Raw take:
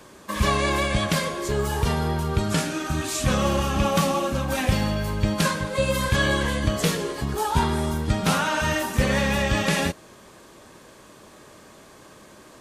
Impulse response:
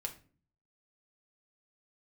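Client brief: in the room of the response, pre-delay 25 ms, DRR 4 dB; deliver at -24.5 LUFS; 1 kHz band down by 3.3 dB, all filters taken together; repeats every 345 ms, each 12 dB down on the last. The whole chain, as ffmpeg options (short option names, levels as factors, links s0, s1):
-filter_complex "[0:a]equalizer=f=1000:t=o:g=-4,aecho=1:1:345|690|1035:0.251|0.0628|0.0157,asplit=2[s0][s1];[1:a]atrim=start_sample=2205,adelay=25[s2];[s1][s2]afir=irnorm=-1:irlink=0,volume=0.708[s3];[s0][s3]amix=inputs=2:normalize=0,volume=0.841"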